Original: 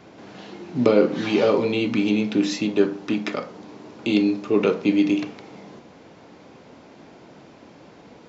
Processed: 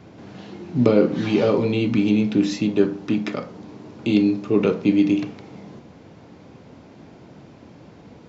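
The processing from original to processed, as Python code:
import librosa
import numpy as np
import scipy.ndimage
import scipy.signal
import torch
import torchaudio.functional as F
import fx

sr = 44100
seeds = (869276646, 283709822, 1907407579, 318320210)

y = fx.peak_eq(x, sr, hz=86.0, db=12.0, octaves=2.7)
y = y * librosa.db_to_amplitude(-2.5)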